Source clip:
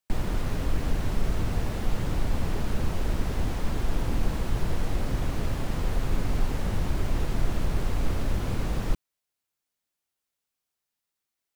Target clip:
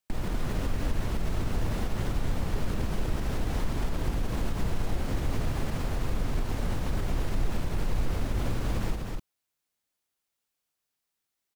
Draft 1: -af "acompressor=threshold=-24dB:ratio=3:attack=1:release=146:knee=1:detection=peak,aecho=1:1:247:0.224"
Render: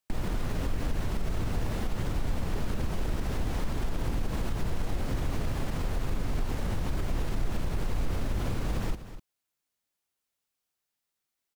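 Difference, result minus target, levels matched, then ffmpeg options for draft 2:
echo-to-direct −9 dB
-af "acompressor=threshold=-24dB:ratio=3:attack=1:release=146:knee=1:detection=peak,aecho=1:1:247:0.631"

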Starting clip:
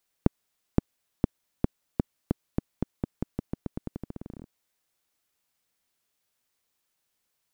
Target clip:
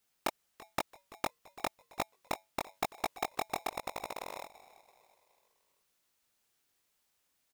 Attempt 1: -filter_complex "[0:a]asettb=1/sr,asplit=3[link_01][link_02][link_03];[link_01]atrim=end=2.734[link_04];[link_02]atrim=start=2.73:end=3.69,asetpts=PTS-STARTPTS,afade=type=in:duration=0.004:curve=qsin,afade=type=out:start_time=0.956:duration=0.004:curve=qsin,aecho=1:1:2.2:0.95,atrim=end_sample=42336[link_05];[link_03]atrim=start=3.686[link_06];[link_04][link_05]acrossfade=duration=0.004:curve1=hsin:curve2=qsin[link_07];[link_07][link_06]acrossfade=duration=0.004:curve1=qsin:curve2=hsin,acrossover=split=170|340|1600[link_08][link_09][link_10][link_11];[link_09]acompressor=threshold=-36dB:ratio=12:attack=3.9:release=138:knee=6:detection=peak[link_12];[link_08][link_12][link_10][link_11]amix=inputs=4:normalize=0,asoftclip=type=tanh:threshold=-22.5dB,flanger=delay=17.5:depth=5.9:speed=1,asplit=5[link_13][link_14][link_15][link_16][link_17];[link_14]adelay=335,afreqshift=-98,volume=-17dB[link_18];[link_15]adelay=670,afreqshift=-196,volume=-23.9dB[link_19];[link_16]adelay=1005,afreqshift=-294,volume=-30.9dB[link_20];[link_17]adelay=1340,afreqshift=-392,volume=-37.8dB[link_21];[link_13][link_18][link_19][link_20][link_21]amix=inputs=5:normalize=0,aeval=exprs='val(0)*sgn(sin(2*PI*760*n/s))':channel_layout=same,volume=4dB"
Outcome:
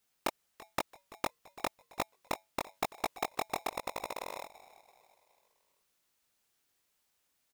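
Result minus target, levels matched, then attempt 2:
downward compressor: peak gain reduction −9.5 dB
-filter_complex "[0:a]asettb=1/sr,asplit=3[link_01][link_02][link_03];[link_01]atrim=end=2.734[link_04];[link_02]atrim=start=2.73:end=3.69,asetpts=PTS-STARTPTS,afade=type=in:duration=0.004:curve=qsin,afade=type=out:start_time=0.956:duration=0.004:curve=qsin,aecho=1:1:2.2:0.95,atrim=end_sample=42336[link_05];[link_03]atrim=start=3.686[link_06];[link_04][link_05]acrossfade=duration=0.004:curve1=hsin:curve2=qsin[link_07];[link_07][link_06]acrossfade=duration=0.004:curve1=qsin:curve2=hsin,acrossover=split=170|340|1600[link_08][link_09][link_10][link_11];[link_09]acompressor=threshold=-46.5dB:ratio=12:attack=3.9:release=138:knee=6:detection=peak[link_12];[link_08][link_12][link_10][link_11]amix=inputs=4:normalize=0,asoftclip=type=tanh:threshold=-22.5dB,flanger=delay=17.5:depth=5.9:speed=1,asplit=5[link_13][link_14][link_15][link_16][link_17];[link_14]adelay=335,afreqshift=-98,volume=-17dB[link_18];[link_15]adelay=670,afreqshift=-196,volume=-23.9dB[link_19];[link_16]adelay=1005,afreqshift=-294,volume=-30.9dB[link_20];[link_17]adelay=1340,afreqshift=-392,volume=-37.8dB[link_21];[link_13][link_18][link_19][link_20][link_21]amix=inputs=5:normalize=0,aeval=exprs='val(0)*sgn(sin(2*PI*760*n/s))':channel_layout=same,volume=4dB"

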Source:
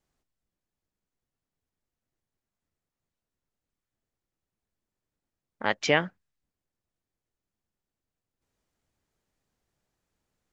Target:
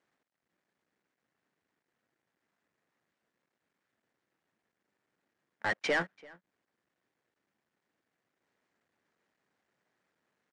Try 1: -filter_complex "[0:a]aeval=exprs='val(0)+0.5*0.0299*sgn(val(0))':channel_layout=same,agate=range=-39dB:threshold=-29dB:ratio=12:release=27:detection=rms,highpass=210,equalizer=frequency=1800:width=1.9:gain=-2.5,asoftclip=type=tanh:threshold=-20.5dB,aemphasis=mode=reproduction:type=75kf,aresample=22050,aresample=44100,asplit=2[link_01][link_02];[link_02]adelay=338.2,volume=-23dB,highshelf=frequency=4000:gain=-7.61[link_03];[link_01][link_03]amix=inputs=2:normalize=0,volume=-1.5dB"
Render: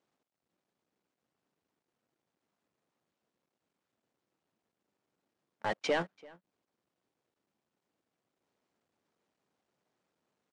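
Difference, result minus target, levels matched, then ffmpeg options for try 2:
2,000 Hz band −4.5 dB
-filter_complex "[0:a]aeval=exprs='val(0)+0.5*0.0299*sgn(val(0))':channel_layout=same,agate=range=-39dB:threshold=-29dB:ratio=12:release=27:detection=rms,highpass=210,equalizer=frequency=1800:width=1.9:gain=7,asoftclip=type=tanh:threshold=-20.5dB,aemphasis=mode=reproduction:type=75kf,aresample=22050,aresample=44100,asplit=2[link_01][link_02];[link_02]adelay=338.2,volume=-23dB,highshelf=frequency=4000:gain=-7.61[link_03];[link_01][link_03]amix=inputs=2:normalize=0,volume=-1.5dB"

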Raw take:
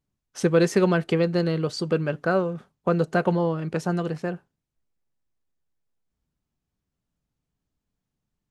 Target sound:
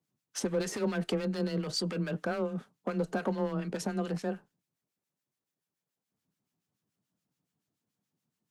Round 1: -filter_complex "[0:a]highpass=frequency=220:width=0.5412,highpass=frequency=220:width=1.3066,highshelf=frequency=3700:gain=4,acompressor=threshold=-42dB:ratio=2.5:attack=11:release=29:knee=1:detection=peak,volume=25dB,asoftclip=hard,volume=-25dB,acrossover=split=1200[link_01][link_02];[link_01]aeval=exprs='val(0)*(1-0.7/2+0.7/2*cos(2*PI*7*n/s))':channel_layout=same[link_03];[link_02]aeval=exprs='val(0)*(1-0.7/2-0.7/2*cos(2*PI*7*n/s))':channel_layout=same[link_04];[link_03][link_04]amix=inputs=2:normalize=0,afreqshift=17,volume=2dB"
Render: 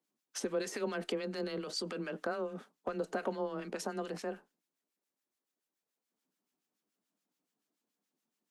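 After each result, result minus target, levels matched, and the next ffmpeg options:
125 Hz band −7.5 dB; downward compressor: peak gain reduction +4.5 dB
-filter_complex "[0:a]highpass=frequency=100:width=0.5412,highpass=frequency=100:width=1.3066,highshelf=frequency=3700:gain=4,acompressor=threshold=-42dB:ratio=2.5:attack=11:release=29:knee=1:detection=peak,volume=25dB,asoftclip=hard,volume=-25dB,acrossover=split=1200[link_01][link_02];[link_01]aeval=exprs='val(0)*(1-0.7/2+0.7/2*cos(2*PI*7*n/s))':channel_layout=same[link_03];[link_02]aeval=exprs='val(0)*(1-0.7/2-0.7/2*cos(2*PI*7*n/s))':channel_layout=same[link_04];[link_03][link_04]amix=inputs=2:normalize=0,afreqshift=17,volume=2dB"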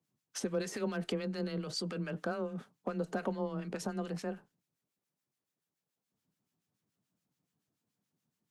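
downward compressor: peak gain reduction +5 dB
-filter_complex "[0:a]highpass=frequency=100:width=0.5412,highpass=frequency=100:width=1.3066,highshelf=frequency=3700:gain=4,acompressor=threshold=-33.5dB:ratio=2.5:attack=11:release=29:knee=1:detection=peak,volume=25dB,asoftclip=hard,volume=-25dB,acrossover=split=1200[link_01][link_02];[link_01]aeval=exprs='val(0)*(1-0.7/2+0.7/2*cos(2*PI*7*n/s))':channel_layout=same[link_03];[link_02]aeval=exprs='val(0)*(1-0.7/2-0.7/2*cos(2*PI*7*n/s))':channel_layout=same[link_04];[link_03][link_04]amix=inputs=2:normalize=0,afreqshift=17,volume=2dB"

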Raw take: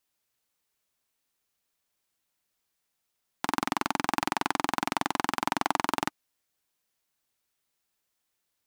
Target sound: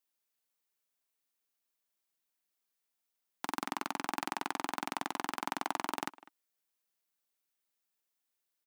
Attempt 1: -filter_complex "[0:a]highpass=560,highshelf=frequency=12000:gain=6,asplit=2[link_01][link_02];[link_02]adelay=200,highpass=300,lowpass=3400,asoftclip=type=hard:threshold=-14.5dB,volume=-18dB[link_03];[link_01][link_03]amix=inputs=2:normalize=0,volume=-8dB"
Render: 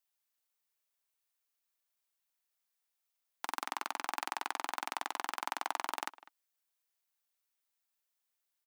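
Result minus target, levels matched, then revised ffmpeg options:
250 Hz band −10.5 dB
-filter_complex "[0:a]highpass=180,highshelf=frequency=12000:gain=6,asplit=2[link_01][link_02];[link_02]adelay=200,highpass=300,lowpass=3400,asoftclip=type=hard:threshold=-14.5dB,volume=-18dB[link_03];[link_01][link_03]amix=inputs=2:normalize=0,volume=-8dB"

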